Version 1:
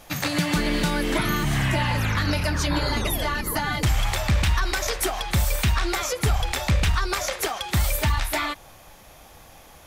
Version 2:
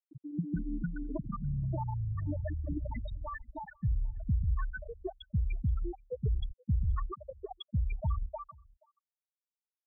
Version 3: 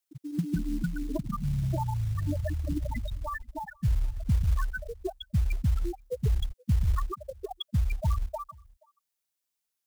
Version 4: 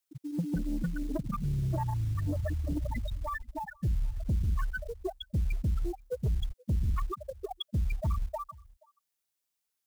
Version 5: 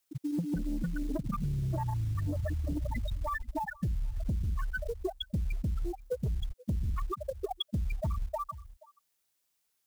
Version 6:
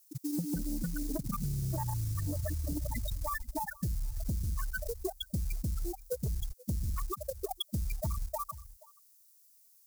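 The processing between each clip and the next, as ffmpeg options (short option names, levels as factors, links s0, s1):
-filter_complex "[0:a]afftfilt=real='re*gte(hypot(re,im),0.355)':imag='im*gte(hypot(re,im),0.355)':win_size=1024:overlap=0.75,asplit=2[s0][s1];[s1]adelay=478.1,volume=0.0447,highshelf=f=4000:g=-10.8[s2];[s0][s2]amix=inputs=2:normalize=0,volume=0.398"
-filter_complex "[0:a]asplit=2[s0][s1];[s1]acrusher=bits=5:mode=log:mix=0:aa=0.000001,volume=0.708[s2];[s0][s2]amix=inputs=2:normalize=0,highshelf=f=3200:g=8"
-af "asoftclip=type=tanh:threshold=0.0668"
-af "acompressor=threshold=0.0158:ratio=6,volume=2"
-af "aexciter=amount=6.7:drive=1.5:freq=4500,volume=0.794"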